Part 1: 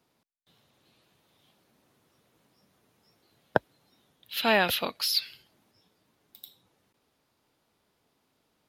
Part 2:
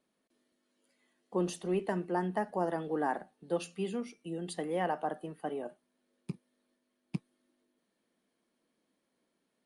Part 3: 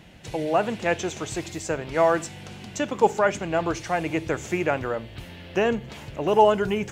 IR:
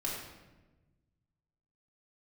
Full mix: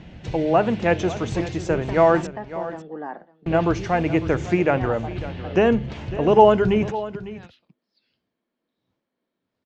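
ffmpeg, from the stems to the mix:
-filter_complex "[0:a]bass=frequency=250:gain=7,treble=frequency=4000:gain=3,aeval=exprs='val(0)*pow(10,-39*(0.5-0.5*cos(2*PI*1.5*n/s))/20)':channel_layout=same,adelay=2250,volume=-10.5dB,asplit=2[link_01][link_02];[link_02]volume=-11dB[link_03];[1:a]lowpass=5200,volume=-1dB,asplit=3[link_04][link_05][link_06];[link_05]volume=-21dB[link_07];[2:a]lowshelf=frequency=280:gain=9,bandreject=frequency=50:width_type=h:width=6,bandreject=frequency=100:width_type=h:width=6,bandreject=frequency=150:width_type=h:width=6,bandreject=frequency=200:width_type=h:width=6,volume=2.5dB,asplit=3[link_08][link_09][link_10];[link_08]atrim=end=2.27,asetpts=PTS-STARTPTS,afade=type=out:start_time=2.266:duration=0.004:curve=hsin[link_11];[link_09]atrim=start=2.27:end=3.46,asetpts=PTS-STARTPTS,volume=0[link_12];[link_10]atrim=start=3.46,asetpts=PTS-STARTPTS,afade=type=in:duration=0.004:curve=hsin[link_13];[link_11][link_12][link_13]concat=n=3:v=0:a=1,asplit=2[link_14][link_15];[link_15]volume=-15dB[link_16];[link_06]apad=whole_len=482117[link_17];[link_01][link_17]sidechaincompress=threshold=-49dB:ratio=8:attack=25:release=1210[link_18];[link_03][link_07][link_16]amix=inputs=3:normalize=0,aecho=0:1:552:1[link_19];[link_18][link_04][link_14][link_19]amix=inputs=4:normalize=0,lowpass=frequency=6500:width=0.5412,lowpass=frequency=6500:width=1.3066,highshelf=frequency=4500:gain=-7.5"

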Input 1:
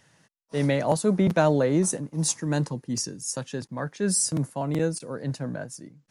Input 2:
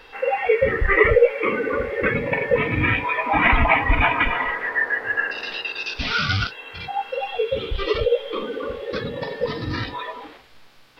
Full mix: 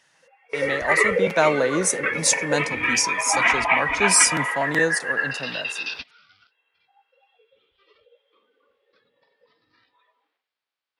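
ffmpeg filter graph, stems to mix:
ffmpeg -i stem1.wav -i stem2.wav -filter_complex "[0:a]dynaudnorm=framelen=370:gausssize=7:maxgain=11.5dB,volume=2.5dB,asplit=2[link_01][link_02];[1:a]volume=0.5dB[link_03];[link_02]apad=whole_len=484662[link_04];[link_03][link_04]sidechaingate=range=-32dB:threshold=-48dB:ratio=16:detection=peak[link_05];[link_01][link_05]amix=inputs=2:normalize=0,highpass=frequency=1000:poles=1,highshelf=frequency=8900:gain=-8" out.wav

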